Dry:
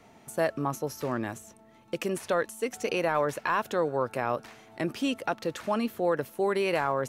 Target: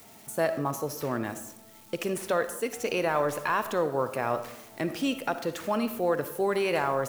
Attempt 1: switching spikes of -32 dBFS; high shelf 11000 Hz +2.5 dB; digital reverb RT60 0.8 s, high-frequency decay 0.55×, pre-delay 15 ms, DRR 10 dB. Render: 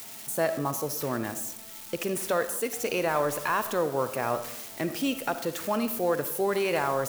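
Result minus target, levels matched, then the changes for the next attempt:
switching spikes: distortion +11 dB
change: switching spikes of -43.5 dBFS

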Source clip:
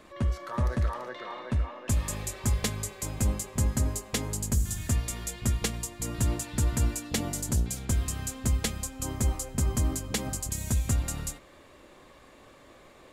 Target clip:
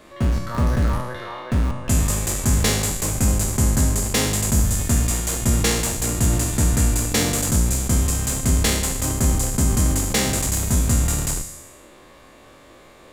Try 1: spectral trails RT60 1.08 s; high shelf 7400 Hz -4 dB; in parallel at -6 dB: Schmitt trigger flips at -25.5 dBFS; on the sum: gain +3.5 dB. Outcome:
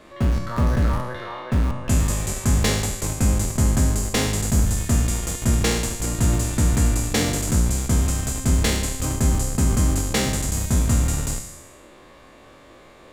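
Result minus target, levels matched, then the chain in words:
8000 Hz band -2.5 dB
spectral trails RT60 1.08 s; high shelf 7400 Hz +3.5 dB; in parallel at -6 dB: Schmitt trigger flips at -25.5 dBFS; on the sum: gain +3.5 dB

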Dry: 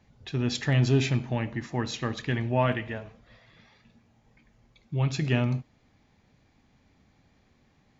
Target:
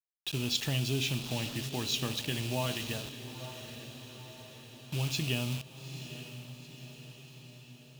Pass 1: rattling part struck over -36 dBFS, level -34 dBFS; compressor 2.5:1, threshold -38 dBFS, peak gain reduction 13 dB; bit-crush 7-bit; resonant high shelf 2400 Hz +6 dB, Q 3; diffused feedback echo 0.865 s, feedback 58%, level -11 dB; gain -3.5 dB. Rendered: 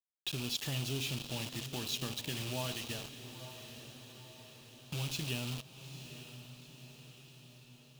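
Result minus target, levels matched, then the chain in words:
compressor: peak gain reduction +6 dB
rattling part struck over -36 dBFS, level -34 dBFS; compressor 2.5:1, threshold -28 dBFS, peak gain reduction 7 dB; bit-crush 7-bit; resonant high shelf 2400 Hz +6 dB, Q 3; diffused feedback echo 0.865 s, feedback 58%, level -11 dB; gain -3.5 dB

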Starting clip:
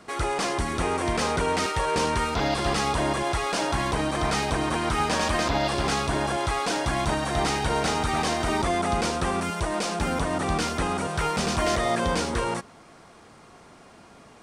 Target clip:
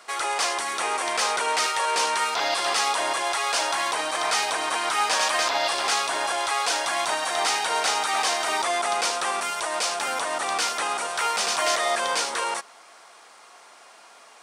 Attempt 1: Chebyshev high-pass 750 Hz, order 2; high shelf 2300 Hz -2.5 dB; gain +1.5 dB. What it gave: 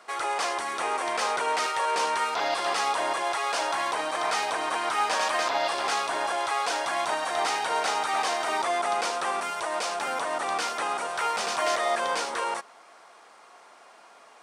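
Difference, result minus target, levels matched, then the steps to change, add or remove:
4000 Hz band -3.5 dB
change: high shelf 2300 Hz +6.5 dB

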